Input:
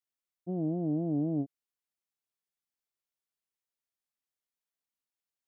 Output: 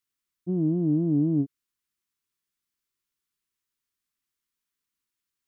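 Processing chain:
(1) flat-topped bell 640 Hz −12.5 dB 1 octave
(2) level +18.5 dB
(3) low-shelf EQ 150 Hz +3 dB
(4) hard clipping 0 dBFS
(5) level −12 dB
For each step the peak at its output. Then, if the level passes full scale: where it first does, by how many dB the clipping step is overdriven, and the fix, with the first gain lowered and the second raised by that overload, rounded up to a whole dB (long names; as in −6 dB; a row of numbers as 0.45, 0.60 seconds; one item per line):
−23.0, −4.5, −3.5, −3.5, −15.5 dBFS
no step passes full scale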